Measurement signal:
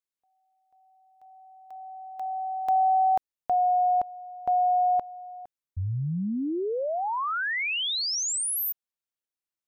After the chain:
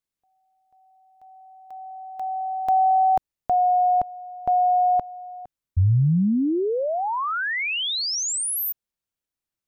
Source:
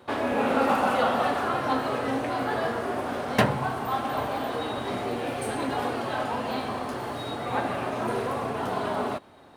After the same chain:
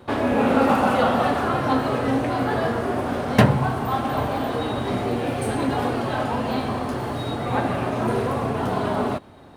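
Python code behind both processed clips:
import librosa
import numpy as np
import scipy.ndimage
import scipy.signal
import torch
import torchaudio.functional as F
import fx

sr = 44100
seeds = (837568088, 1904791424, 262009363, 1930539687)

y = fx.low_shelf(x, sr, hz=250.0, db=10.5)
y = F.gain(torch.from_numpy(y), 2.5).numpy()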